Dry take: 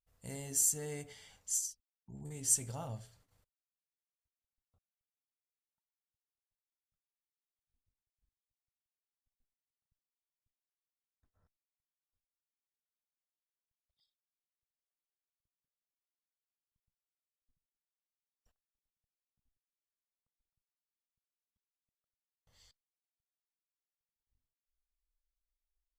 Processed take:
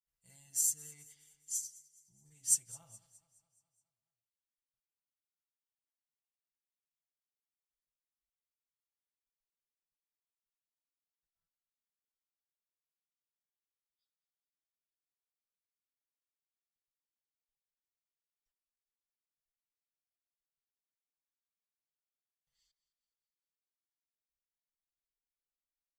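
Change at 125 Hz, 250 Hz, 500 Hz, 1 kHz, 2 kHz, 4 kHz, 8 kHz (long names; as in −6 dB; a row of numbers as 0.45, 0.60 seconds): −18.0 dB, below −20 dB, below −20 dB, below −15 dB, below −10 dB, −3.5 dB, −1.0 dB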